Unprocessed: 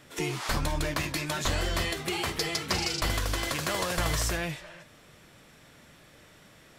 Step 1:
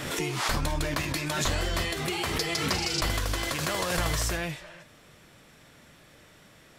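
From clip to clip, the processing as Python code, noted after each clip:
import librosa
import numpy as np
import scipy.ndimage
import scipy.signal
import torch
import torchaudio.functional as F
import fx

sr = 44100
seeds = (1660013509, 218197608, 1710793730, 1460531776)

y = fx.pre_swell(x, sr, db_per_s=39.0)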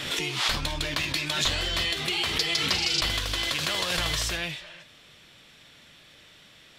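y = fx.peak_eq(x, sr, hz=3400.0, db=13.0, octaves=1.4)
y = y * librosa.db_to_amplitude(-4.0)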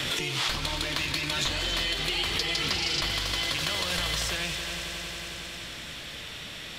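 y = fx.echo_heads(x, sr, ms=91, heads='all three', feedback_pct=69, wet_db=-15)
y = fx.band_squash(y, sr, depth_pct=70)
y = y * librosa.db_to_amplitude(-2.5)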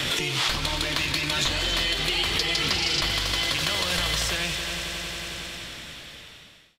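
y = fx.fade_out_tail(x, sr, length_s=1.38)
y = y * librosa.db_to_amplitude(3.5)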